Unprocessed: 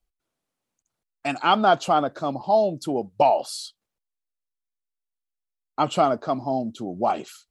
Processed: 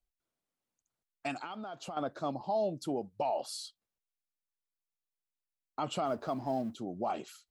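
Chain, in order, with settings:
0:06.06–0:06.75: mu-law and A-law mismatch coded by mu
brickwall limiter −16 dBFS, peak gain reduction 10.5 dB
0:01.40–0:01.97: downward compressor 10 to 1, threshold −31 dBFS, peak gain reduction 11 dB
level −8 dB

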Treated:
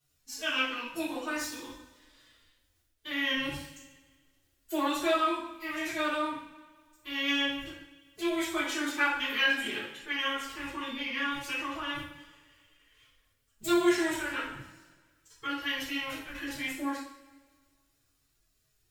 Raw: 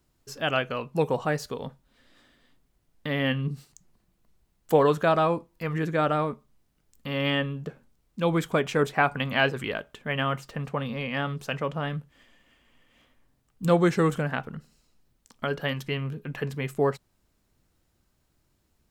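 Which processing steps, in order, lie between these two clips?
guitar amp tone stack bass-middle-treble 5-5-5
phase-vocoder pitch shift with formants kept +12 semitones
coupled-rooms reverb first 0.58 s, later 1.7 s, from −16 dB, DRR −10 dB

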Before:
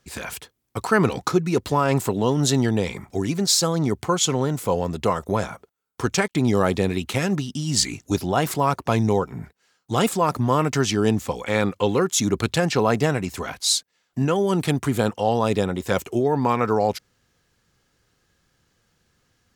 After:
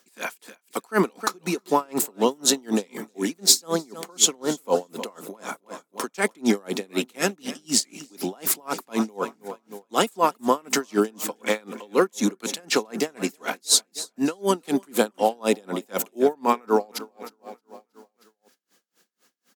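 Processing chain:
Butterworth high-pass 210 Hz 36 dB per octave
high-shelf EQ 8,400 Hz +11 dB
in parallel at −1.5 dB: brickwall limiter −14 dBFS, peak gain reduction 10.5 dB
on the sum: repeating echo 314 ms, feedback 56%, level −15.5 dB
tremolo with a sine in dB 4 Hz, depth 34 dB

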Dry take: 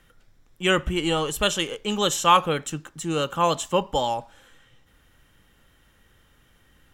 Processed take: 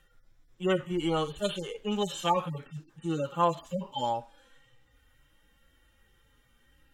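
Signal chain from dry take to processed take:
harmonic-percussive split with one part muted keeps harmonic
level −3.5 dB

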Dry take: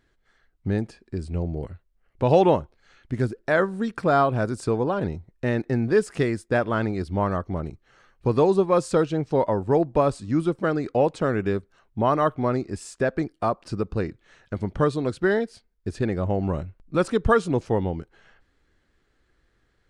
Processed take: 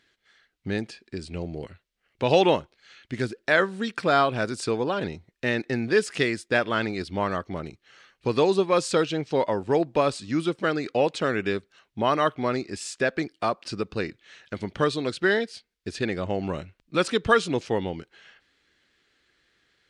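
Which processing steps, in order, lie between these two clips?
meter weighting curve D
level −1.5 dB

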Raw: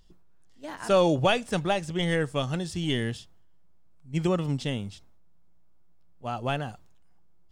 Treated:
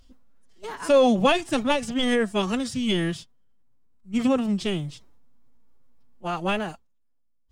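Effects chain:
phase-vocoder pitch shift with formants kept +6.5 semitones
level +4 dB

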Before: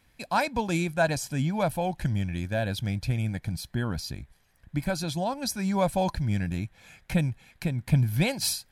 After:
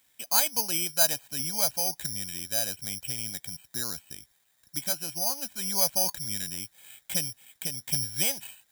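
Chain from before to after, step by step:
high-pass filter 410 Hz 6 dB per octave
high-shelf EQ 3,100 Hz +8 dB
bad sample-rate conversion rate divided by 8×, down filtered, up zero stuff
level −7 dB

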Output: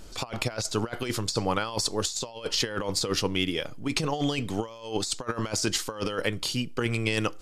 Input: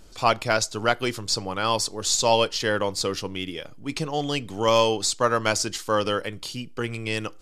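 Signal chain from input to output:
compressor whose output falls as the input rises −28 dBFS, ratio −0.5

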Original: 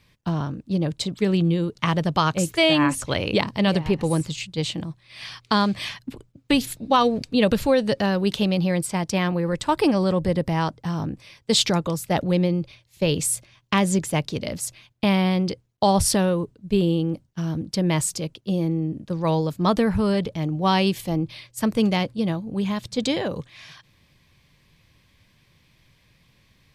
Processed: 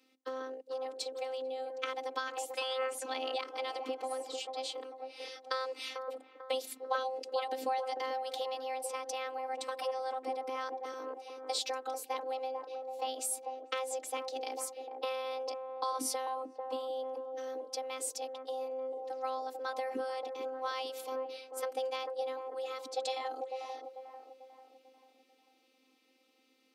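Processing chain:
downward compressor, threshold −21 dBFS, peak gain reduction 8.5 dB
frequency shifter +250 Hz
phases set to zero 261 Hz
delay with a band-pass on its return 444 ms, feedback 43%, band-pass 580 Hz, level −4 dB
level −8 dB

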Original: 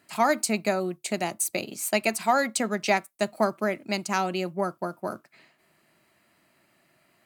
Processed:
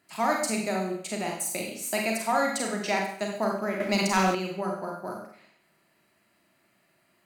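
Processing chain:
four-comb reverb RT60 0.62 s, combs from 32 ms, DRR −0.5 dB
0:03.80–0:04.35: leveller curve on the samples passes 2
level −5.5 dB

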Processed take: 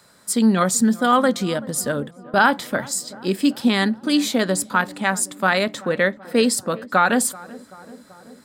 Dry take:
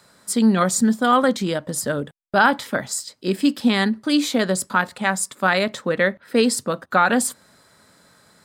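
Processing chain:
high-shelf EQ 10,000 Hz +4.5 dB
feedback echo with a low-pass in the loop 383 ms, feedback 74%, low-pass 1,300 Hz, level −20 dB

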